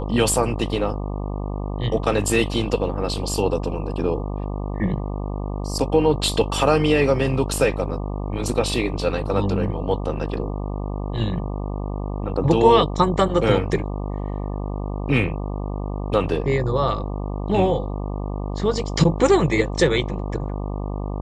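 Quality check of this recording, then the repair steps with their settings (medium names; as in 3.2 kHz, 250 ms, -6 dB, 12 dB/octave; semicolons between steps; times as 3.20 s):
buzz 50 Hz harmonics 24 -27 dBFS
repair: de-hum 50 Hz, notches 24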